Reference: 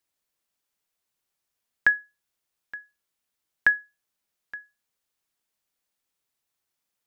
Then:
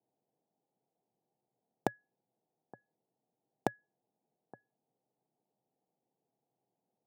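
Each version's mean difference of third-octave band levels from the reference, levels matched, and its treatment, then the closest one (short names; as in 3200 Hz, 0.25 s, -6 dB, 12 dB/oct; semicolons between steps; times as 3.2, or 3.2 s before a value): 6.5 dB: Chebyshev band-pass 120–810 Hz, order 4; notch 570 Hz, Q 12; in parallel at -10.5 dB: companded quantiser 2-bit; on the sum: gain +10.5 dB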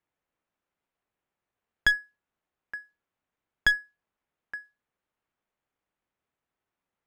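2.5 dB: median filter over 9 samples; high shelf 3400 Hz -10 dB; one-sided clip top -24.5 dBFS; gain +3 dB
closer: second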